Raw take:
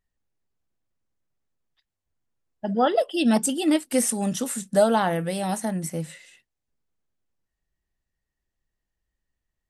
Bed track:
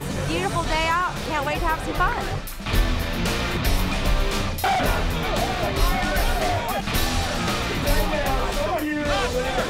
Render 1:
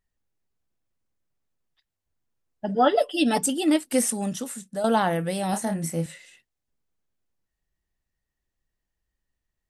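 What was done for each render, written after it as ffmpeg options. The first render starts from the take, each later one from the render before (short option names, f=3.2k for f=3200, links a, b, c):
-filter_complex "[0:a]asettb=1/sr,asplit=3[a][b][c];[a]atrim=end=2.684[d];[b]atrim=start=2.68:end=3.45,asetpts=PTS-STARTPTS,afade=t=in:d=0.004:c=qsin,afade=t=out:st=0.766:d=0.004:c=qsin,aecho=1:1:6.9:0.69,atrim=end_sample=33957[e];[c]atrim=start=3.446[f];[d][e]acrossfade=d=0.004:c1=hsin:c2=qsin[g];[g][f]acrossfade=d=0.004:c1=qsin:c2=hsin,asettb=1/sr,asplit=3[h][i][j];[h]atrim=end=5.504[k];[i]atrim=start=5.5:end=6.06,asetpts=PTS-STARTPTS,afade=t=in:d=0.004:c=qsin,afade=t=out:st=0.556:d=0.004:c=qsin,asplit=2[l][m];[m]adelay=30,volume=-6dB[n];[l][n]amix=inputs=2:normalize=0,atrim=end_sample=24696[o];[j]atrim=start=6.056[p];[k][o]acrossfade=d=0.004:c1=hsin:c2=qsin[q];[q][p]acrossfade=d=0.004:c1=qsin:c2=hsin,asplit=2[r][s];[r]atrim=end=4.84,asetpts=PTS-STARTPTS,afade=t=out:st=3.95:d=0.89:silence=0.237137[t];[s]atrim=start=4.84,asetpts=PTS-STARTPTS,afade=t=in:d=0.004:c=hsin:silence=0.237137[u];[t][u]concat=n=2:v=0:a=1"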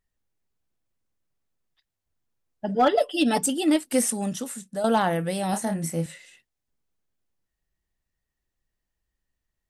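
-af "asoftclip=type=hard:threshold=-12.5dB"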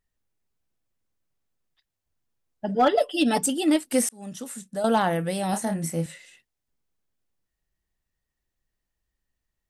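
-filter_complex "[0:a]asplit=2[a][b];[a]atrim=end=4.09,asetpts=PTS-STARTPTS,afade=t=out:st=4.086:d=0.004:c=hsin[c];[b]atrim=start=4.09,asetpts=PTS-STARTPTS,afade=t=in:d=0.53[d];[c][d]concat=n=2:v=0:a=1"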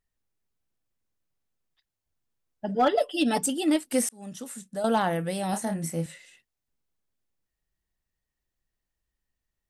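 -af "volume=-2.5dB"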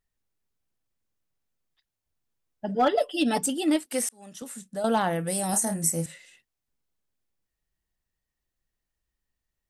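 -filter_complex "[0:a]asettb=1/sr,asplit=3[a][b][c];[a]atrim=end=3.864[d];[b]atrim=start=3.86:end=4.42,asetpts=PTS-STARTPTS,afade=t=in:d=0.004:c=qsin,afade=t=out:st=0.556:d=0.004:c=qsin,highpass=f=480:p=1[e];[c]atrim=start=4.416[f];[d][e]acrossfade=d=0.004:c1=hsin:c2=qsin[g];[g][f]acrossfade=d=0.004:c1=qsin:c2=hsin,asettb=1/sr,asplit=3[h][i][j];[h]atrim=end=5.274[k];[i]atrim=start=5.27:end=6.06,asetpts=PTS-STARTPTS,afade=t=in:d=0.004:c=qsin,afade=t=out:st=0.786:d=0.004:c=qsin,highshelf=f=5k:t=q:w=1.5:g=10.5[l];[j]atrim=start=6.056[m];[k][l]acrossfade=d=0.004:c1=hsin:c2=qsin[n];[n][m]acrossfade=d=0.004:c1=qsin:c2=hsin"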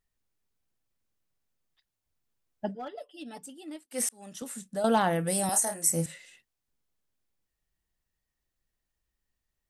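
-filter_complex "[0:a]asettb=1/sr,asplit=3[a][b][c];[a]atrim=end=5.494[d];[b]atrim=start=5.49:end=5.9,asetpts=PTS-STARTPTS,afade=t=in:d=0.004:c=qsin,afade=t=out:st=0.406:d=0.004:c=qsin,highpass=460[e];[c]atrim=start=5.896[f];[d][e]acrossfade=d=0.004:c1=hsin:c2=qsin[g];[g][f]acrossfade=d=0.004:c1=qsin:c2=hsin,asplit=3[h][i][j];[h]atrim=end=3.11,asetpts=PTS-STARTPTS,afade=t=out:st=2.67:d=0.44:c=exp:silence=0.11885[k];[i]atrim=start=3.11:end=3.57,asetpts=PTS-STARTPTS,volume=-18.5dB[l];[j]atrim=start=3.57,asetpts=PTS-STARTPTS,afade=t=in:d=0.44:c=exp:silence=0.11885[m];[k][l][m]concat=n=3:v=0:a=1"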